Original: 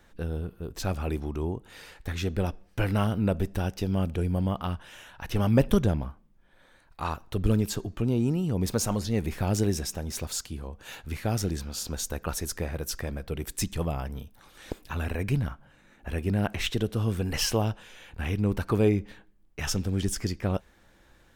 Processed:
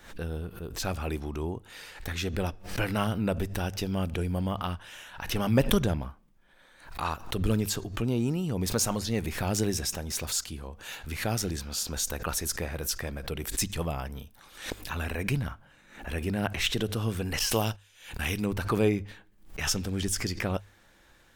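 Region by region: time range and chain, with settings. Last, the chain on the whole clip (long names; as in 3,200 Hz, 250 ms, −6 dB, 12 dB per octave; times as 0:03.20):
0:17.39–0:18.46: de-essing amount 75% + noise gate −40 dBFS, range −19 dB + high-shelf EQ 3,400 Hz +11.5 dB
whole clip: tilt shelving filter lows −3 dB, about 860 Hz; mains-hum notches 50/100 Hz; background raised ahead of every attack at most 110 dB per second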